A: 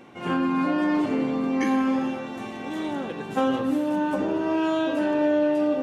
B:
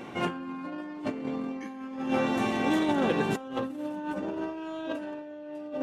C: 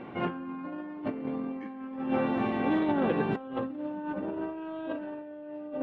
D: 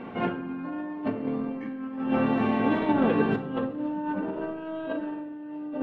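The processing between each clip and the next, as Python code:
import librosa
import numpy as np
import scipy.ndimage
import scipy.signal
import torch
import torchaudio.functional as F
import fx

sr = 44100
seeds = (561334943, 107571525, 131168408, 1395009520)

y1 = fx.over_compress(x, sr, threshold_db=-30.0, ratio=-0.5)
y2 = fx.air_absorb(y1, sr, metres=410.0)
y3 = fx.room_shoebox(y2, sr, seeds[0], volume_m3=2000.0, walls='furnished', distance_m=1.6)
y3 = y3 * 10.0 ** (2.5 / 20.0)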